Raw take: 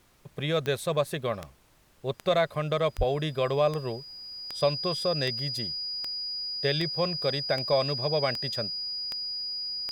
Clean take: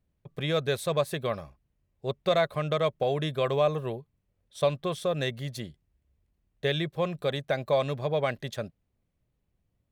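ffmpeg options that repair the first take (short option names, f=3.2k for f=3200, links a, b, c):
-filter_complex "[0:a]adeclick=t=4,bandreject=f=4.9k:w=30,asplit=3[a][b][c];[a]afade=t=out:st=2.97:d=0.02[d];[b]highpass=f=140:w=0.5412,highpass=f=140:w=1.3066,afade=t=in:st=2.97:d=0.02,afade=t=out:st=3.09:d=0.02[e];[c]afade=t=in:st=3.09:d=0.02[f];[d][e][f]amix=inputs=3:normalize=0,agate=range=-21dB:threshold=-45dB"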